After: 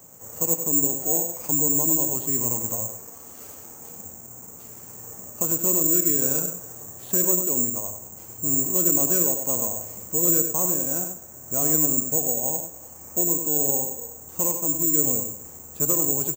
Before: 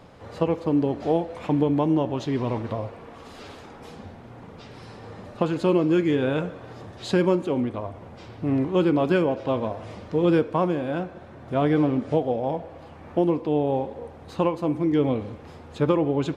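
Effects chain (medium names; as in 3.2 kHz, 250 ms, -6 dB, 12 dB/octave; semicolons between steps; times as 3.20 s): high-pass 76 Hz; treble shelf 2.4 kHz -7.5 dB; in parallel at 0 dB: peak limiter -17 dBFS, peak gain reduction 9 dB; on the sum: delay 99 ms -7.5 dB; careless resampling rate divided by 6×, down filtered, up zero stuff; trim -12.5 dB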